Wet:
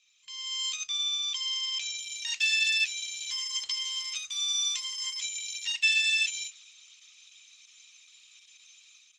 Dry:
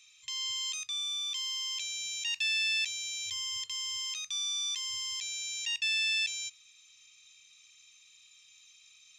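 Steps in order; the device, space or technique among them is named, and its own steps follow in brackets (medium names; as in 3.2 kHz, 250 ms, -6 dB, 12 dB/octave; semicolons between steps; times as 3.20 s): video call (high-pass 160 Hz 24 dB/octave; level rider gain up to 11 dB; trim -6.5 dB; Opus 12 kbps 48 kHz)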